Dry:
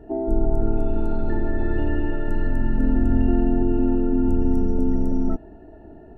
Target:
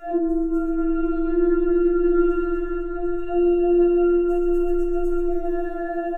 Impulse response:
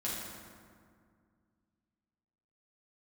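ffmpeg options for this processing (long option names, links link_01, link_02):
-filter_complex "[0:a]tiltshelf=frequency=1400:gain=-4,aecho=1:1:134|268|402|536|670:0.355|0.167|0.0784|0.0368|0.0173,acompressor=threshold=-31dB:ratio=6,asettb=1/sr,asplit=3[link_01][link_02][link_03];[link_01]atrim=end=0.694[link_04];[link_02]atrim=start=0.69:end=3.18,asetpts=PTS-STARTPTS,afade=type=in:duration=0.004:curve=qsin,afade=type=out:start_time=2.486:duration=0.004:curve=qsin,aemphasis=mode=reproduction:type=75fm[link_05];[link_03]atrim=start=3.176[link_06];[link_04][link_05]acrossfade=duration=0.004:curve1=hsin:curve2=qsin[link_07];[link_07][link_06]acrossfade=duration=0.004:curve1=qsin:curve2=hsin[link_08];[1:a]atrim=start_sample=2205,afade=type=out:start_time=0.4:duration=0.01,atrim=end_sample=18081,asetrate=57330,aresample=44100[link_09];[link_08][link_09]afir=irnorm=-1:irlink=0,acrossover=split=390[link_10][link_11];[link_11]acompressor=threshold=-42dB:ratio=6[link_12];[link_10][link_12]amix=inputs=2:normalize=0,alimiter=level_in=26.5dB:limit=-1dB:release=50:level=0:latency=1,afftfilt=real='re*4*eq(mod(b,16),0)':imag='im*4*eq(mod(b,16),0)':win_size=2048:overlap=0.75,volume=-8dB"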